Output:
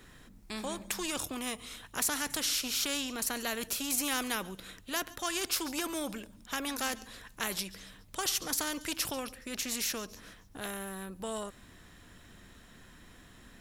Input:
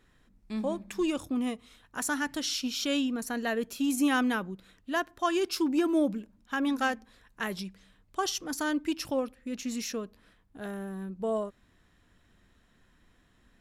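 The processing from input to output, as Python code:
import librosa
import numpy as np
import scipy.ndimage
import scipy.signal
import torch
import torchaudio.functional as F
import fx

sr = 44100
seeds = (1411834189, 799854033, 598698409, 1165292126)

p1 = fx.high_shelf(x, sr, hz=6000.0, db=7.5)
p2 = p1 + fx.echo_wet_highpass(p1, sr, ms=140, feedback_pct=42, hz=3700.0, wet_db=-23.5, dry=0)
y = fx.spectral_comp(p2, sr, ratio=2.0)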